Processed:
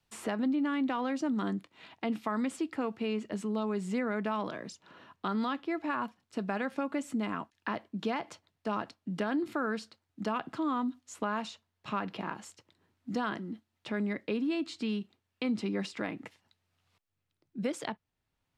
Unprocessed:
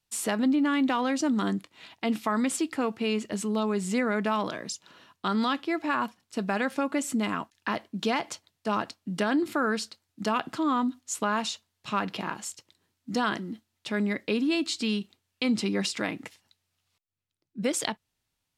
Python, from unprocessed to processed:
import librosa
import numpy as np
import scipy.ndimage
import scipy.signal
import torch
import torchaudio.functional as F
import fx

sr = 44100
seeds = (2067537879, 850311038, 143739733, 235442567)

y = fx.high_shelf(x, sr, hz=3800.0, db=-12.0)
y = fx.band_squash(y, sr, depth_pct=40)
y = y * 10.0 ** (-5.0 / 20.0)